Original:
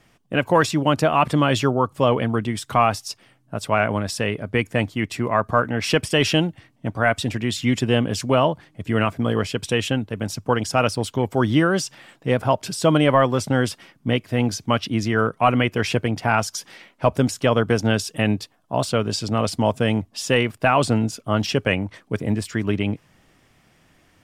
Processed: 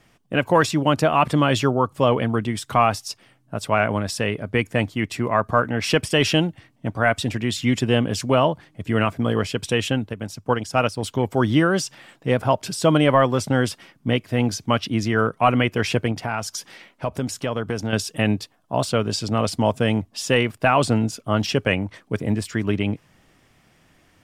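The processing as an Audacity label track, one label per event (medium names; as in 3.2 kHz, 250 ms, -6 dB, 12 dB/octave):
10.130000	11.030000	upward expansion, over -28 dBFS
16.120000	17.930000	compression 2:1, threshold -25 dBFS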